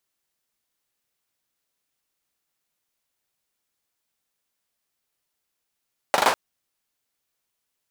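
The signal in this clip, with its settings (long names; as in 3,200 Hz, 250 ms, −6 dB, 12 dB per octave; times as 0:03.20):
synth clap length 0.20 s, apart 40 ms, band 810 Hz, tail 0.38 s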